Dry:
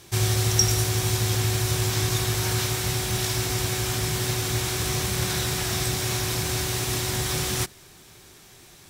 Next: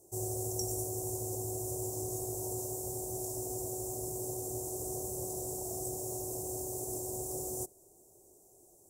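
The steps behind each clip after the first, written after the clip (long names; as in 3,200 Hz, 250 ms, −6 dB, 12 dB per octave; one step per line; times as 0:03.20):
elliptic band-stop filter 690–7,300 Hz, stop band 70 dB
low shelf with overshoot 270 Hz −9.5 dB, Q 1.5
level −7.5 dB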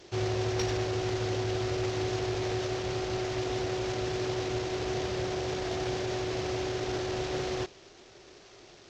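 variable-slope delta modulation 32 kbit/s
in parallel at −8 dB: hard clipping −39.5 dBFS, distortion −11 dB
on the sum: level +6.5 dB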